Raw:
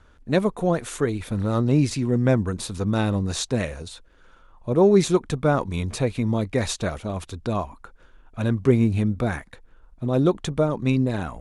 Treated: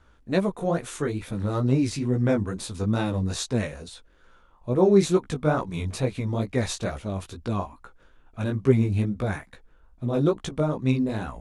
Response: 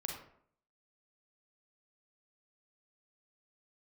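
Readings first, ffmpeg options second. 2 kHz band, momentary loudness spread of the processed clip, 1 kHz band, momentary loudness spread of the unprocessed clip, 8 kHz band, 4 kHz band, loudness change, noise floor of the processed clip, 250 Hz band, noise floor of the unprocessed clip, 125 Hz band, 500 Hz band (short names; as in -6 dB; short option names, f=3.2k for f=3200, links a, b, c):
-3.0 dB, 11 LU, -3.0 dB, 11 LU, -3.0 dB, -3.0 dB, -2.5 dB, -57 dBFS, -2.5 dB, -53 dBFS, -2.0 dB, -2.5 dB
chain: -af "flanger=delay=15:depth=5.6:speed=2.3"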